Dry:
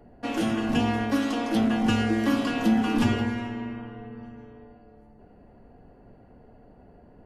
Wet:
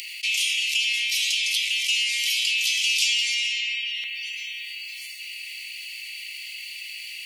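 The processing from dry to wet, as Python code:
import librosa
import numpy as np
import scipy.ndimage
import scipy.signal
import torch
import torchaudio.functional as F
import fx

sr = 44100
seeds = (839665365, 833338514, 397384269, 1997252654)

y = scipy.signal.sosfilt(scipy.signal.butter(16, 2200.0, 'highpass', fs=sr, output='sos'), x)
y = fx.peak_eq(y, sr, hz=5800.0, db=fx.steps((0.0, 2.5), (2.67, 11.5), (4.04, 2.0)), octaves=1.9)
y = fx.env_flatten(y, sr, amount_pct=70)
y = F.gain(torch.from_numpy(y), 6.5).numpy()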